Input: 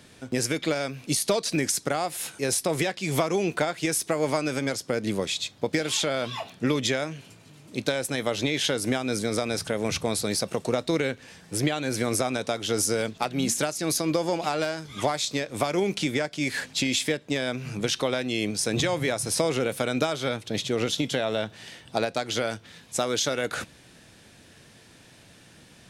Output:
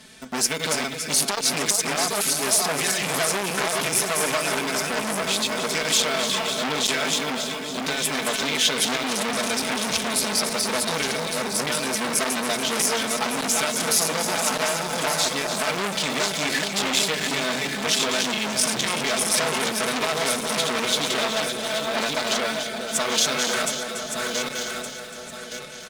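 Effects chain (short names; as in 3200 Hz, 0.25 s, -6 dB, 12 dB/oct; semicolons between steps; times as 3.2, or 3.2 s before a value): regenerating reverse delay 0.583 s, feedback 56%, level -4 dB; tilt shelf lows -3 dB, about 1100 Hz; notch 440 Hz, Q 12; comb 4.6 ms, depth 97%; in parallel at -9 dB: bit-crush 5-bit; on the sum: sine folder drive 5 dB, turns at -2.5 dBFS; on a send: split-band echo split 1400 Hz, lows 0.411 s, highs 0.286 s, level -9 dB; on the sum: core saturation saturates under 3400 Hz; gain -7.5 dB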